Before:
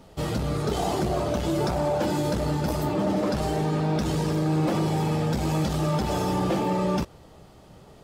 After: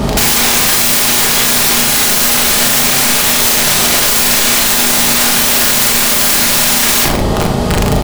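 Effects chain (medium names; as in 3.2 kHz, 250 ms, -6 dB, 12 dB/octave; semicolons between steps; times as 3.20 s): octave divider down 2 oct, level +4 dB; 5.08–6.22 s: hum notches 50/100/150 Hz; high-pass 54 Hz 12 dB/octave; integer overflow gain 38 dB; mains buzz 120 Hz, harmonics 10, -61 dBFS -2 dB/octave; doubling 38 ms -3 dB; simulated room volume 930 m³, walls furnished, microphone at 1.3 m; loudness maximiser +33.5 dB; trim -1 dB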